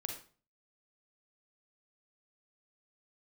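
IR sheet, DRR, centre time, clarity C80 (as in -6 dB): 2.5 dB, 24 ms, 10.5 dB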